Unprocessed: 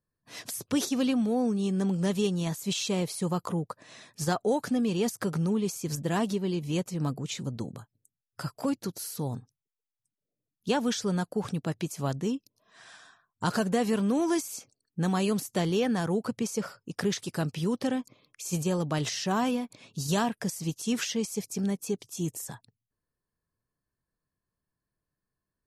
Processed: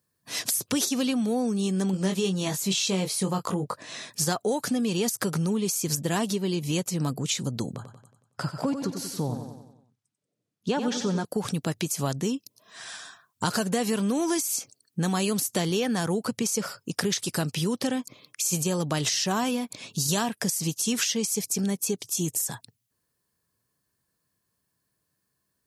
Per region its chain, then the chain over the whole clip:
1.91–4.1 high shelf 7500 Hz -8.5 dB + doubler 21 ms -5.5 dB
7.75–11.25 LPF 8000 Hz + high shelf 2400 Hz -10 dB + feedback echo 92 ms, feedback 51%, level -9 dB
whole clip: HPF 81 Hz; high shelf 3200 Hz +9.5 dB; compressor 2.5:1, threshold -33 dBFS; gain +7 dB

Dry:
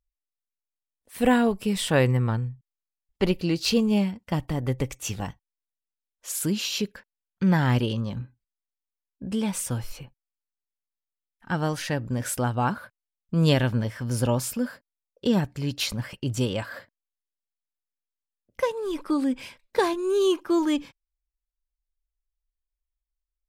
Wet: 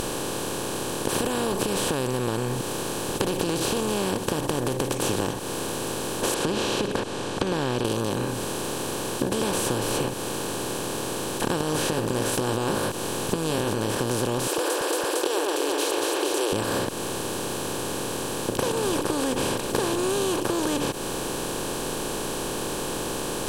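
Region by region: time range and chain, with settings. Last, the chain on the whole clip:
1.19–4.94 high shelf 11000 Hz +3.5 dB + compressor 4:1, threshold -32 dBFS
6.34–7.85 compressor 4:1, threshold -34 dBFS + LPF 3800 Hz 24 dB/oct
11.6–13.95 doubler 19 ms -5.5 dB + negative-ratio compressor -29 dBFS
14.47–16.53 brick-wall FIR high-pass 320 Hz + echo with dull and thin repeats by turns 0.114 s, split 2500 Hz, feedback 69%, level -5 dB
whole clip: per-bin compression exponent 0.2; notch 2000 Hz, Q 5.3; compressor, threshold -22 dBFS

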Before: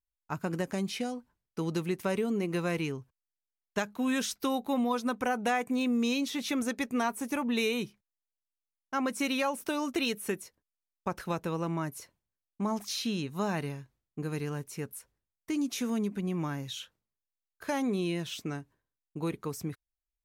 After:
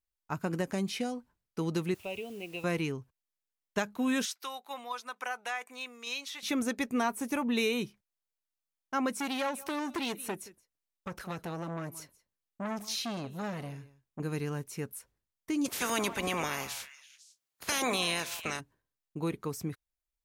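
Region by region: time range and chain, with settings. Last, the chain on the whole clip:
1.94–2.64 EQ curve 100 Hz 0 dB, 150 Hz -15 dB, 250 Hz -15 dB, 720 Hz -4 dB, 1100 Hz -17 dB, 1700 Hz -27 dB, 2600 Hz +6 dB, 4700 Hz -15 dB + requantised 10-bit, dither triangular
4.25–6.43 HPF 1000 Hz + high shelf 9700 Hz -6 dB + tremolo saw down 2.2 Hz, depth 35%
9.19–14.2 echo 0.174 s -22 dB + core saturation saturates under 1500 Hz
15.64–18.59 spectral limiter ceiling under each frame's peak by 27 dB + HPF 44 Hz + delay with a stepping band-pass 0.167 s, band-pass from 920 Hz, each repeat 1.4 oct, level -9 dB
whole clip: dry

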